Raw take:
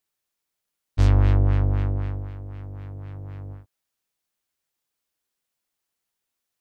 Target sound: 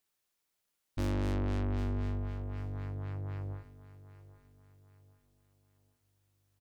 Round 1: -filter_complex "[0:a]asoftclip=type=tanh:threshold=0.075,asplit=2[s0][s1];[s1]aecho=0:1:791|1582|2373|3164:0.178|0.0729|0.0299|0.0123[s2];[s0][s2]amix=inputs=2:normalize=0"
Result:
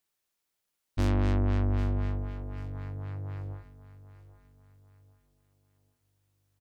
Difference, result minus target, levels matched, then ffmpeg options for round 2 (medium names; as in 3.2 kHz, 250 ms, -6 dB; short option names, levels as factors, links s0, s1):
saturation: distortion -4 dB
-filter_complex "[0:a]asoftclip=type=tanh:threshold=0.0316,asplit=2[s0][s1];[s1]aecho=0:1:791|1582|2373|3164:0.178|0.0729|0.0299|0.0123[s2];[s0][s2]amix=inputs=2:normalize=0"